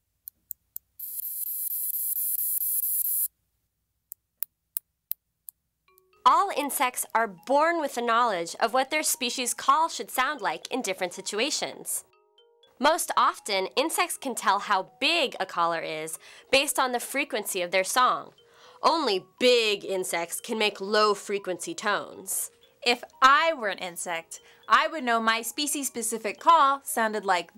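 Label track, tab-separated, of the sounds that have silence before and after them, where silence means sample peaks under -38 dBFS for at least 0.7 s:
4.120000	12.000000	sound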